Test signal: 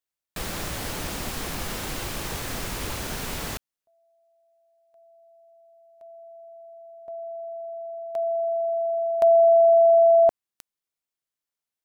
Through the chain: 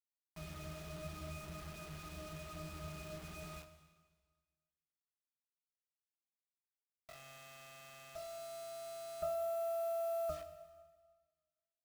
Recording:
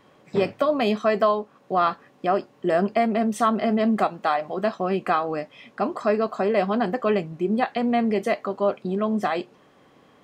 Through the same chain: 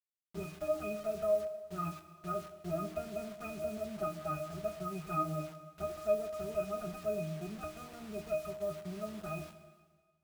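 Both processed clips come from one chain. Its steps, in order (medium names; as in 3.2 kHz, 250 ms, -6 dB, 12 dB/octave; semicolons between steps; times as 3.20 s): comb filter that takes the minimum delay 4.8 ms; pitch-class resonator D#, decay 0.34 s; whistle 1.2 kHz -69 dBFS; bit crusher 9-bit; plate-style reverb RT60 1.5 s, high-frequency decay 1×, DRR 9 dB; trim +1.5 dB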